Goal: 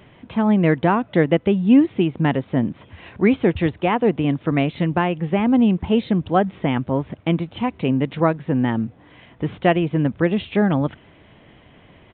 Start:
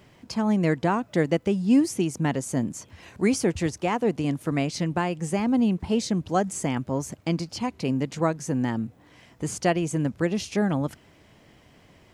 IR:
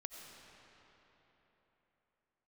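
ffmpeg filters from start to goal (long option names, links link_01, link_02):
-af "aresample=8000,aresample=44100,volume=6dB"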